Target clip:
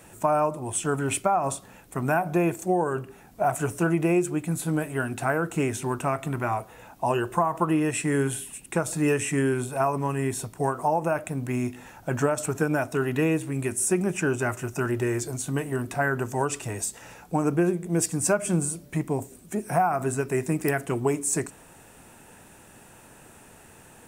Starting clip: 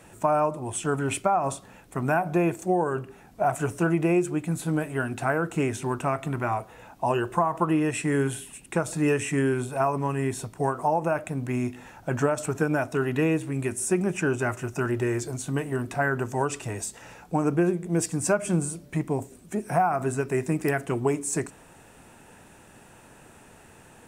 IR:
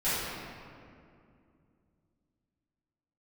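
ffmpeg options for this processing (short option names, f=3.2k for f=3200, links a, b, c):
-af "highshelf=f=9.6k:g=9.5"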